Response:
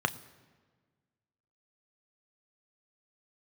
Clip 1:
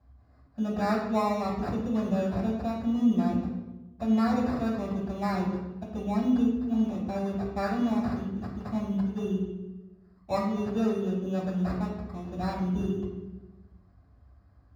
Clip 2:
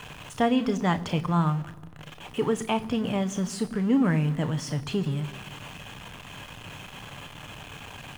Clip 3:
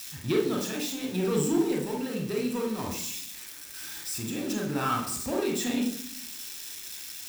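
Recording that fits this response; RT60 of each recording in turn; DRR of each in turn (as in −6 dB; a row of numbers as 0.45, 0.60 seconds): 2; 1.1, 1.5, 0.65 seconds; −7.5, 10.0, −0.5 decibels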